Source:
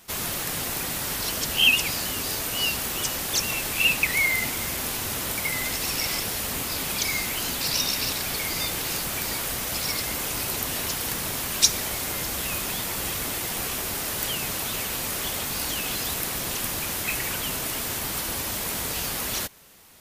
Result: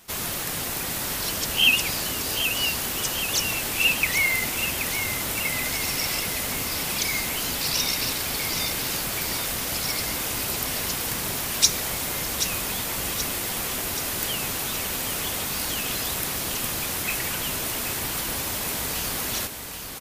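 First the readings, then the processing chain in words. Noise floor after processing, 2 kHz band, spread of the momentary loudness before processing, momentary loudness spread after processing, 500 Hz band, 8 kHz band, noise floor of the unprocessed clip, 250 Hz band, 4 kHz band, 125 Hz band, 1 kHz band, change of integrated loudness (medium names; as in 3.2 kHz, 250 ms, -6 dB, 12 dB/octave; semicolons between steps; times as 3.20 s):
-30 dBFS, +1.0 dB, 7 LU, 6 LU, +1.0 dB, +1.0 dB, -30 dBFS, +1.0 dB, +1.0 dB, +1.0 dB, +1.0 dB, +1.0 dB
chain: feedback delay 778 ms, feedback 56%, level -8.5 dB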